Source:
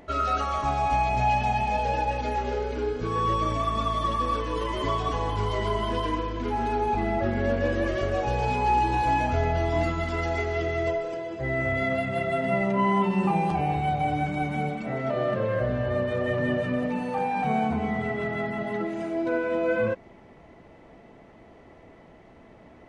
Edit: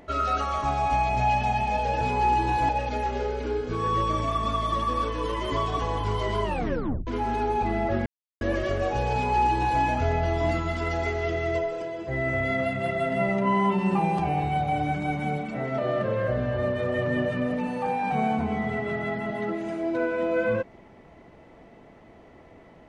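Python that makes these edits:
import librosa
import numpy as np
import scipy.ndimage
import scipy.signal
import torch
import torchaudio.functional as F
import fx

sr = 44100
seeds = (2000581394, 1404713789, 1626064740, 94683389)

y = fx.edit(x, sr, fx.tape_stop(start_s=5.76, length_s=0.63),
    fx.silence(start_s=7.38, length_s=0.35),
    fx.duplicate(start_s=8.46, length_s=0.68, to_s=2.01), tone=tone)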